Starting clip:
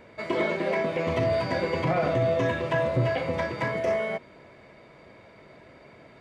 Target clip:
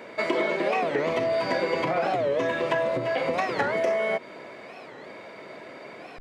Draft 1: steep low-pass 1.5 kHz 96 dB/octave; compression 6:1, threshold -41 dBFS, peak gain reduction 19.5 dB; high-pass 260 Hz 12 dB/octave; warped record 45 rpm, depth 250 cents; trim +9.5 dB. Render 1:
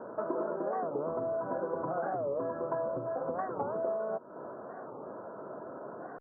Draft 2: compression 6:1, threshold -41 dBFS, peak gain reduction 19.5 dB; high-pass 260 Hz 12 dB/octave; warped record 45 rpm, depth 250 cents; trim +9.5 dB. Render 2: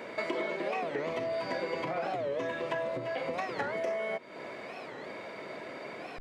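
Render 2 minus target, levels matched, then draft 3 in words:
compression: peak gain reduction +8.5 dB
compression 6:1, threshold -31 dBFS, peak gain reduction 11.5 dB; high-pass 260 Hz 12 dB/octave; warped record 45 rpm, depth 250 cents; trim +9.5 dB

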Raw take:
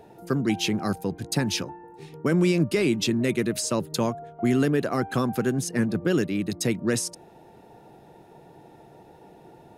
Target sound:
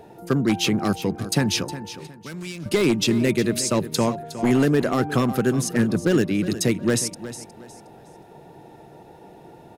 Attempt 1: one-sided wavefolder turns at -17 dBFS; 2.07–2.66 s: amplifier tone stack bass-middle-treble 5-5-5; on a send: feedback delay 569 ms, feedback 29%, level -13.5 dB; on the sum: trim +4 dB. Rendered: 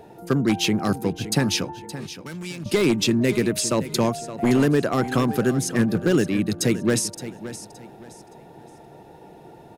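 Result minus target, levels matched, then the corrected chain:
echo 207 ms late
one-sided wavefolder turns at -17 dBFS; 2.07–2.66 s: amplifier tone stack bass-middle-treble 5-5-5; on a send: feedback delay 362 ms, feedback 29%, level -13.5 dB; on the sum: trim +4 dB

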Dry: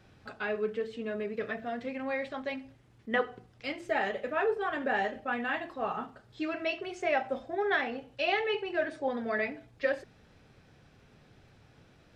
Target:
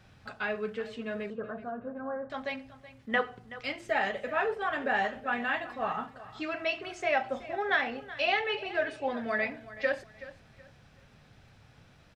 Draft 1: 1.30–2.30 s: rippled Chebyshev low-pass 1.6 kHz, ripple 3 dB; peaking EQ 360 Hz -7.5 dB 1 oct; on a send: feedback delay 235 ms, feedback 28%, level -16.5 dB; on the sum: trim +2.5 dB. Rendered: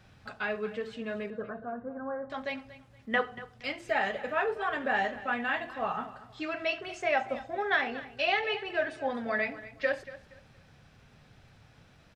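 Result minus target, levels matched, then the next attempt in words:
echo 141 ms early
1.30–2.30 s: rippled Chebyshev low-pass 1.6 kHz, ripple 3 dB; peaking EQ 360 Hz -7.5 dB 1 oct; on a send: feedback delay 376 ms, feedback 28%, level -16.5 dB; on the sum: trim +2.5 dB

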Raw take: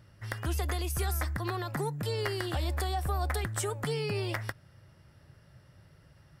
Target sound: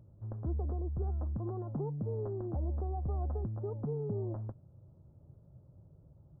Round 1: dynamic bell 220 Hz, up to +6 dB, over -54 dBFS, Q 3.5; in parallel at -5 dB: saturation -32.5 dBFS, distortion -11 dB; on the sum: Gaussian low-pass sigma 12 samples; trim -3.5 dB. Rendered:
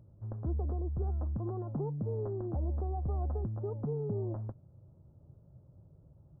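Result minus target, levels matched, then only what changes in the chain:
saturation: distortion -5 dB
change: saturation -40 dBFS, distortion -6 dB

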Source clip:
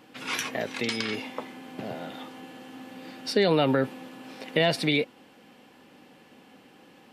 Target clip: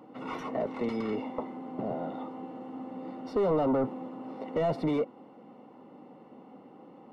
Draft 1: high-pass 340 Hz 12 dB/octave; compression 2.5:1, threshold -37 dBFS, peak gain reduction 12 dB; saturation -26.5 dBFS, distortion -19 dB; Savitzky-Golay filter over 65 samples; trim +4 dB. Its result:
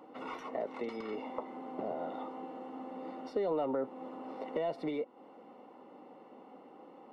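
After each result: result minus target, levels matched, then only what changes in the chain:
compression: peak gain reduction +12 dB; 125 Hz band -9.0 dB
remove: compression 2.5:1, threshold -37 dBFS, peak gain reduction 12 dB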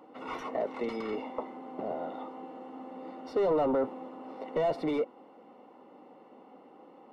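125 Hz band -8.0 dB
change: high-pass 140 Hz 12 dB/octave

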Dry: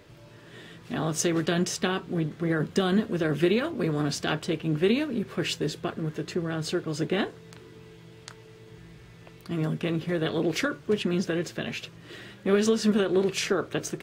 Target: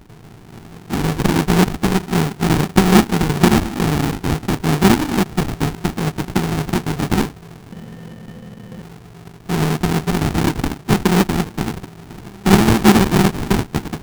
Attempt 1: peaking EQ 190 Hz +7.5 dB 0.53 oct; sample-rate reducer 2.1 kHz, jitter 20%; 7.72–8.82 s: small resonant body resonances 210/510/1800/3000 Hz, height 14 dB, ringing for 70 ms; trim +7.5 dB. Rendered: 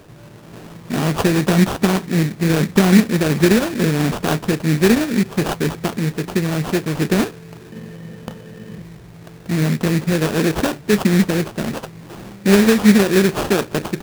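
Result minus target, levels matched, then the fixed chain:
sample-rate reducer: distortion -17 dB
peaking EQ 190 Hz +7.5 dB 0.53 oct; sample-rate reducer 570 Hz, jitter 20%; 7.72–8.82 s: small resonant body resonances 210/510/1800/3000 Hz, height 14 dB, ringing for 70 ms; trim +7.5 dB

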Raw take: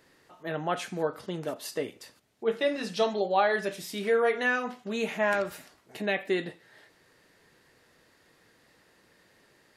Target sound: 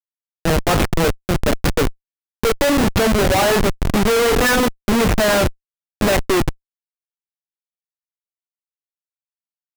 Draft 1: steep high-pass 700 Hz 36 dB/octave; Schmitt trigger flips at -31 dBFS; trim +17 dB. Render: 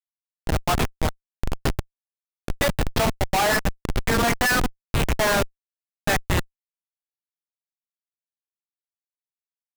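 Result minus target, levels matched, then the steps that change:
250 Hz band -4.0 dB
change: steep high-pass 180 Hz 36 dB/octave

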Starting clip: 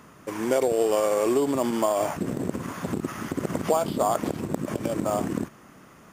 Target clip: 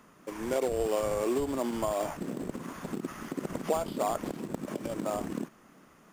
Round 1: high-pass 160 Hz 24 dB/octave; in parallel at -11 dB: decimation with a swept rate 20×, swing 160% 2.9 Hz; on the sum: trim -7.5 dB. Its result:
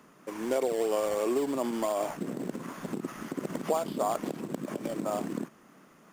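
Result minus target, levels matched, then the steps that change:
decimation with a swept rate: distortion -13 dB
change: decimation with a swept rate 68×, swing 160% 2.9 Hz

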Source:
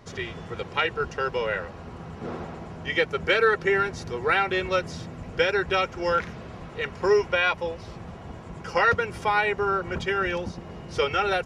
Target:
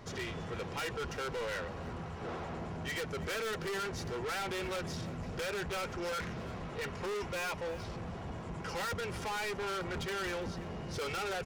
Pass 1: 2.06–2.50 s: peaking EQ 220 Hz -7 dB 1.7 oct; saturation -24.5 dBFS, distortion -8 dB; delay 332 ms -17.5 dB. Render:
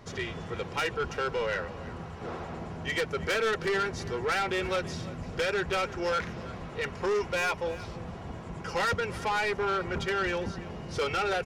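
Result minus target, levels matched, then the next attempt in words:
saturation: distortion -6 dB
2.06–2.50 s: peaking EQ 220 Hz -7 dB 1.7 oct; saturation -35 dBFS, distortion -2 dB; delay 332 ms -17.5 dB

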